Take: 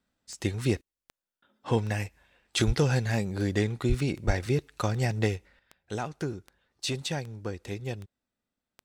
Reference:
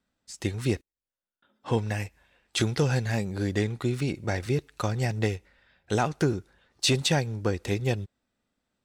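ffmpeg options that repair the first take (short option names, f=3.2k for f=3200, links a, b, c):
-filter_complex "[0:a]adeclick=t=4,asplit=3[a][b][c];[a]afade=t=out:st=2.66:d=0.02[d];[b]highpass=f=140:w=0.5412,highpass=f=140:w=1.3066,afade=t=in:st=2.66:d=0.02,afade=t=out:st=2.78:d=0.02[e];[c]afade=t=in:st=2.78:d=0.02[f];[d][e][f]amix=inputs=3:normalize=0,asplit=3[g][h][i];[g]afade=t=out:st=3.88:d=0.02[j];[h]highpass=f=140:w=0.5412,highpass=f=140:w=1.3066,afade=t=in:st=3.88:d=0.02,afade=t=out:st=4:d=0.02[k];[i]afade=t=in:st=4:d=0.02[l];[j][k][l]amix=inputs=3:normalize=0,asplit=3[m][n][o];[m]afade=t=out:st=4.26:d=0.02[p];[n]highpass=f=140:w=0.5412,highpass=f=140:w=1.3066,afade=t=in:st=4.26:d=0.02,afade=t=out:st=4.38:d=0.02[q];[o]afade=t=in:st=4.38:d=0.02[r];[p][q][r]amix=inputs=3:normalize=0,asetnsamples=n=441:p=0,asendcmd='5.59 volume volume 8dB',volume=0dB"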